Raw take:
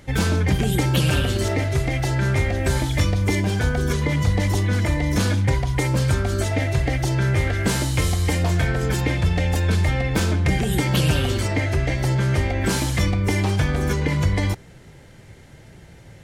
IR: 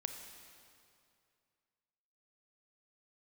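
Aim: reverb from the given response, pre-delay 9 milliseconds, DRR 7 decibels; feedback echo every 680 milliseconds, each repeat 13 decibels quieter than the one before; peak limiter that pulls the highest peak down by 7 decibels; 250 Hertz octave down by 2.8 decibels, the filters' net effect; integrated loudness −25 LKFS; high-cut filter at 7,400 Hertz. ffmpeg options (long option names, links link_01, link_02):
-filter_complex "[0:a]lowpass=7400,equalizer=frequency=250:width_type=o:gain=-4.5,alimiter=limit=-15.5dB:level=0:latency=1,aecho=1:1:680|1360|2040:0.224|0.0493|0.0108,asplit=2[link_01][link_02];[1:a]atrim=start_sample=2205,adelay=9[link_03];[link_02][link_03]afir=irnorm=-1:irlink=0,volume=-6dB[link_04];[link_01][link_04]amix=inputs=2:normalize=0,volume=-2dB"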